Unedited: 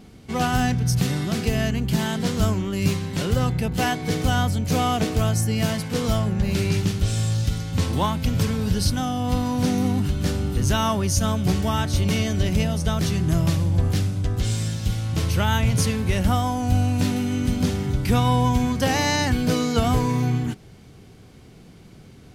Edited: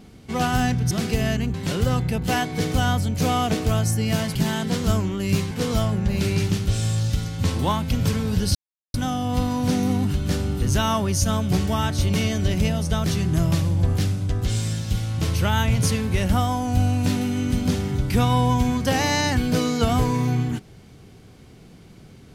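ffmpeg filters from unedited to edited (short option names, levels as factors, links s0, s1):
-filter_complex "[0:a]asplit=6[s0][s1][s2][s3][s4][s5];[s0]atrim=end=0.912[s6];[s1]atrim=start=1.248:end=1.882[s7];[s2]atrim=start=3.038:end=5.852[s8];[s3]atrim=start=1.878:end=3.042[s9];[s4]atrim=start=5.848:end=8.89,asetpts=PTS-STARTPTS,afade=t=out:st=3.038:d=0.004:c=hsin,apad=pad_dur=0.39[s10];[s5]atrim=start=8.89,asetpts=PTS-STARTPTS,afade=t=in:d=0.004:c=hsin[s11];[s6][s7]acrossfade=d=0.004:c1=hsin:c2=hsin[s12];[s12][s8]acrossfade=d=0.004:c1=hsin:c2=hsin[s13];[s13][s9]acrossfade=d=0.004:c1=hsin:c2=hsin[s14];[s10][s11]concat=n=2:v=0:a=1[s15];[s14][s15]acrossfade=d=0.004:c1=hsin:c2=hsin"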